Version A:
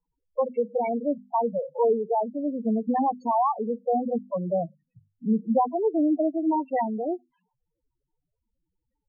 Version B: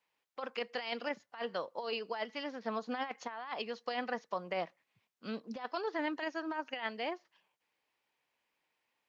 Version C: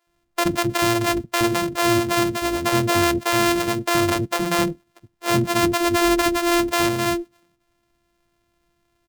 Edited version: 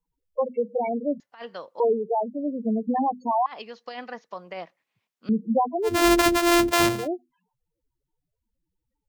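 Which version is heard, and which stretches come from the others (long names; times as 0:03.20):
A
0:01.20–0:01.80: punch in from B
0:03.46–0:05.29: punch in from B
0:05.94–0:06.96: punch in from C, crossfade 0.24 s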